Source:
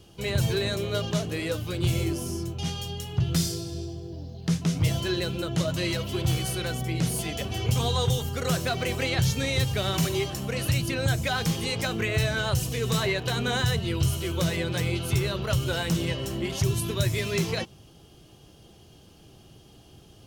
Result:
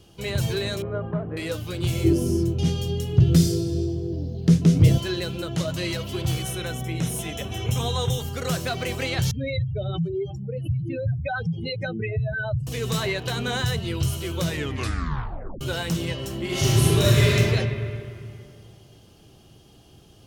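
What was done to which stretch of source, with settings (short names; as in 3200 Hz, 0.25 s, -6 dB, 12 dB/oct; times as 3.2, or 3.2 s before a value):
0.82–1.37 LPF 1500 Hz 24 dB/oct
2.04–4.98 resonant low shelf 600 Hz +8.5 dB, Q 1.5
6.42–8.2 Butterworth band-stop 4600 Hz, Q 4.9
9.31–12.67 spectral contrast raised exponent 3
14.47 tape stop 1.14 s
16.45–17.29 reverb throw, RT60 2.5 s, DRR -9 dB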